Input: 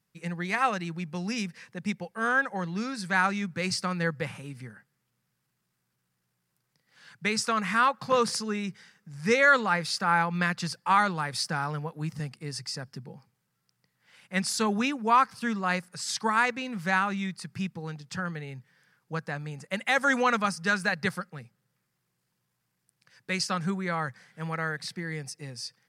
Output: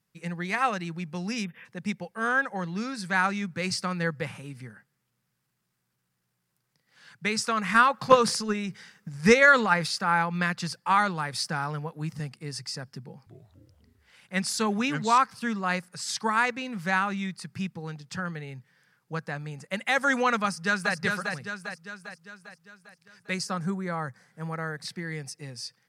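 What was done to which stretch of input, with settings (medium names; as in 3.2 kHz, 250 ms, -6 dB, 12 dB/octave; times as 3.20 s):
1.44–1.65 s: time-frequency box 3.7–11 kHz -29 dB
7.62–9.88 s: transient shaper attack +10 dB, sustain +5 dB
13.03–15.18 s: ever faster or slower copies 234 ms, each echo -4 st, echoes 3, each echo -6 dB
20.45–20.95 s: echo throw 400 ms, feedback 55%, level -4.5 dB
23.34–24.85 s: peaking EQ 2.9 kHz -9.5 dB 1.4 oct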